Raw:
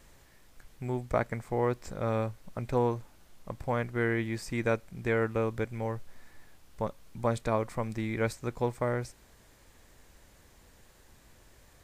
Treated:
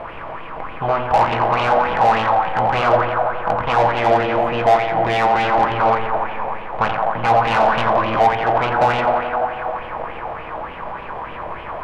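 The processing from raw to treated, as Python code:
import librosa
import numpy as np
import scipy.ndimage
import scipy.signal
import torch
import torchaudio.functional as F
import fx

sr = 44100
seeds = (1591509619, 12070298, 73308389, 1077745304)

y = fx.bin_compress(x, sr, power=0.6)
y = fx.peak_eq(y, sr, hz=780.0, db=8.5, octaves=1.1)
y = fx.echo_tape(y, sr, ms=86, feedback_pct=87, wet_db=-6, lp_hz=4200.0, drive_db=8.0, wow_cents=10)
y = fx.formant_shift(y, sr, semitones=5)
y = fx.leveller(y, sr, passes=1)
y = fx.air_absorb(y, sr, metres=470.0)
y = fx.room_shoebox(y, sr, seeds[0], volume_m3=200.0, walls='furnished', distance_m=0.64)
y = 10.0 ** (-20.5 / 20.0) * np.tanh(y / 10.0 ** (-20.5 / 20.0))
y = fx.bell_lfo(y, sr, hz=3.4, low_hz=640.0, high_hz=3000.0, db=11)
y = F.gain(torch.from_numpy(y), 4.5).numpy()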